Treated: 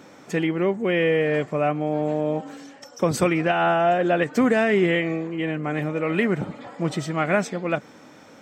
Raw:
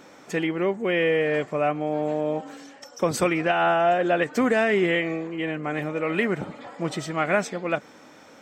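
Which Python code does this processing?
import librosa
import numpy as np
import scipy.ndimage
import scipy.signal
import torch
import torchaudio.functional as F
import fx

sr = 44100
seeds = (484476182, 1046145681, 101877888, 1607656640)

y = scipy.signal.sosfilt(scipy.signal.butter(2, 90.0, 'highpass', fs=sr, output='sos'), x)
y = fx.low_shelf(y, sr, hz=180.0, db=10.5)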